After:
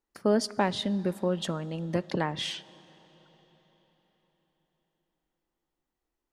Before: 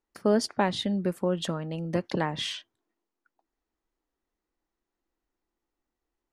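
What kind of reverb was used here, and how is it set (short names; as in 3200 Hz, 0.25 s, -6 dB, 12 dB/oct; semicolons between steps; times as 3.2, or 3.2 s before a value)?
digital reverb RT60 4.7 s, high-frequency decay 0.85×, pre-delay 0 ms, DRR 19.5 dB; gain -1 dB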